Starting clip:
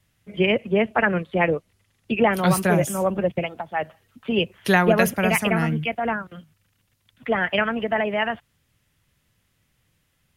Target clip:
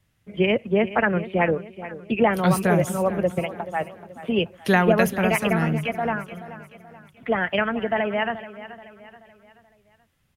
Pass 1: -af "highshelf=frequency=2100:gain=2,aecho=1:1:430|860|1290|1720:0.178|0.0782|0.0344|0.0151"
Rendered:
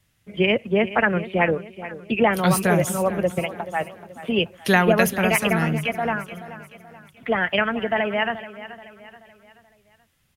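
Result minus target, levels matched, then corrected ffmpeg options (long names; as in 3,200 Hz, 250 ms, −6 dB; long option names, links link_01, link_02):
4,000 Hz band +3.5 dB
-af "highshelf=frequency=2100:gain=-4.5,aecho=1:1:430|860|1290|1720:0.178|0.0782|0.0344|0.0151"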